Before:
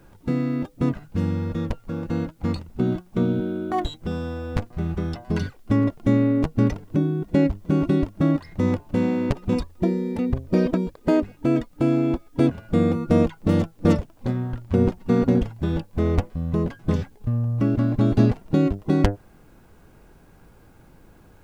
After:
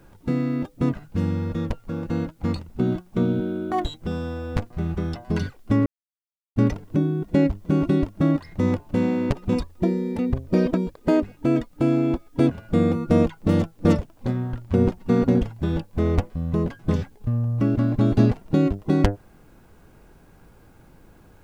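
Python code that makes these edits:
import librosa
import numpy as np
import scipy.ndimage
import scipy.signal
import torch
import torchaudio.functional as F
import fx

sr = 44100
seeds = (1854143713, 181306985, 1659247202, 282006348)

y = fx.edit(x, sr, fx.silence(start_s=5.86, length_s=0.7), tone=tone)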